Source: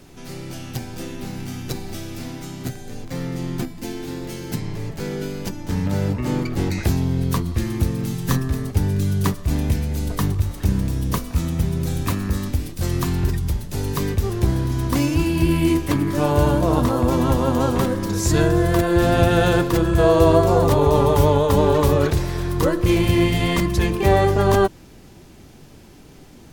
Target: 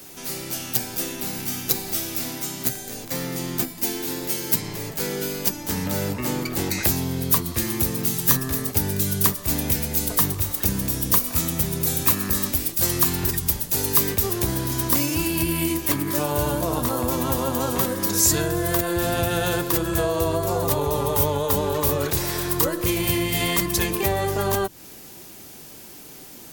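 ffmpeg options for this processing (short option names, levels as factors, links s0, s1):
-filter_complex "[0:a]acrossover=split=150[s0][s1];[s1]acompressor=threshold=0.0708:ratio=5[s2];[s0][s2]amix=inputs=2:normalize=0,aemphasis=mode=production:type=bsi,volume=1.33"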